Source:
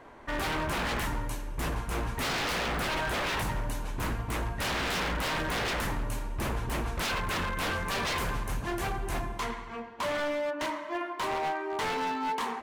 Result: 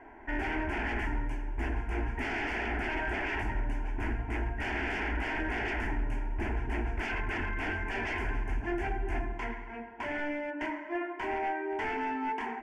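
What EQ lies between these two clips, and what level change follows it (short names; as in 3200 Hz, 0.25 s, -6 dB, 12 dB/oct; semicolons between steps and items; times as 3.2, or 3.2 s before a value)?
LPF 2800 Hz 12 dB/oct; fixed phaser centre 790 Hz, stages 8; dynamic EQ 920 Hz, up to -4 dB, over -47 dBFS, Q 1.2; +2.5 dB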